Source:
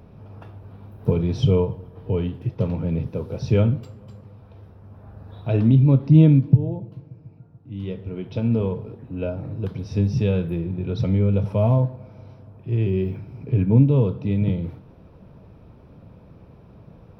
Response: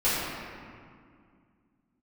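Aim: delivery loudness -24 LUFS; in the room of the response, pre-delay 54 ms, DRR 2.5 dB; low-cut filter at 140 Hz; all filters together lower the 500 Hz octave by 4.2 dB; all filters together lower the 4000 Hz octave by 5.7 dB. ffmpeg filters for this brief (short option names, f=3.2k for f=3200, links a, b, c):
-filter_complex "[0:a]highpass=140,equalizer=f=500:t=o:g=-5,equalizer=f=4k:t=o:g=-8,asplit=2[a][b];[1:a]atrim=start_sample=2205,adelay=54[c];[b][c]afir=irnorm=-1:irlink=0,volume=-17dB[d];[a][d]amix=inputs=2:normalize=0,volume=-1dB"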